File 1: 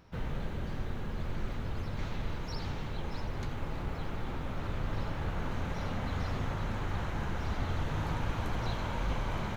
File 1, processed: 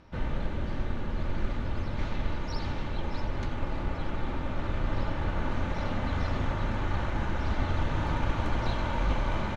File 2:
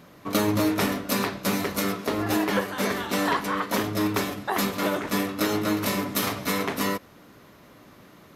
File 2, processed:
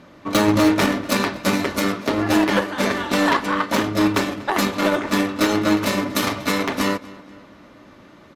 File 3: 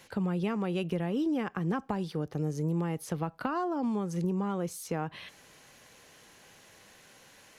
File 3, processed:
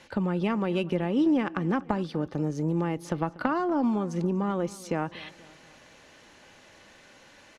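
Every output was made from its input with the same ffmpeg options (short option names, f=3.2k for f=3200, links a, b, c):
-filter_complex "[0:a]aecho=1:1:3.4:0.31,adynamicsmooth=sensitivity=4.5:basefreq=6.4k,aeval=exprs='0.335*(cos(1*acos(clip(val(0)/0.335,-1,1)))-cos(1*PI/2))+0.075*(cos(3*acos(clip(val(0)/0.335,-1,1)))-cos(3*PI/2))':c=same,apsyclip=21dB,asplit=2[a][b];[b]adelay=240,lowpass=f=4.8k:p=1,volume=-20dB,asplit=2[c][d];[d]adelay=240,lowpass=f=4.8k:p=1,volume=0.51,asplit=2[e][f];[f]adelay=240,lowpass=f=4.8k:p=1,volume=0.51,asplit=2[g][h];[h]adelay=240,lowpass=f=4.8k:p=1,volume=0.51[i];[c][e][g][i]amix=inputs=4:normalize=0[j];[a][j]amix=inputs=2:normalize=0,volume=-7.5dB"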